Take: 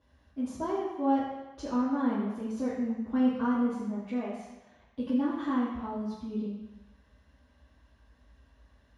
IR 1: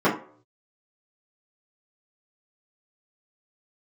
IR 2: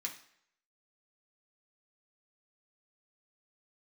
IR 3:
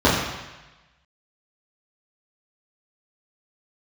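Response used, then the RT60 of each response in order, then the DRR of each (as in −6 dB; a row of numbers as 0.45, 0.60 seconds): 3; 0.50 s, non-exponential decay, 1.1 s; −10.0, −1.0, −9.5 decibels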